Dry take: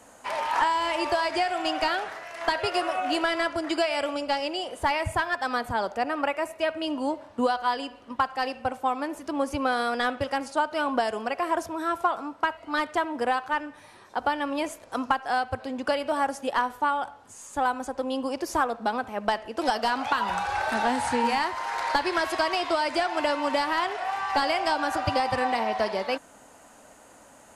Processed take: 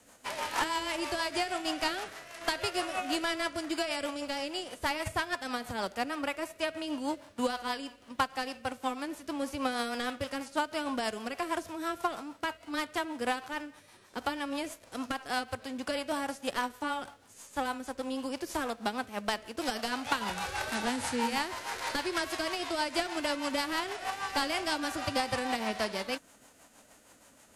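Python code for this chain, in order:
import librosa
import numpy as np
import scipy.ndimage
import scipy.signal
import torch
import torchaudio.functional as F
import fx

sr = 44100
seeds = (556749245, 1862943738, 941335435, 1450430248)

y = fx.envelope_flatten(x, sr, power=0.6)
y = fx.rotary(y, sr, hz=6.3)
y = y * 10.0 ** (-4.0 / 20.0)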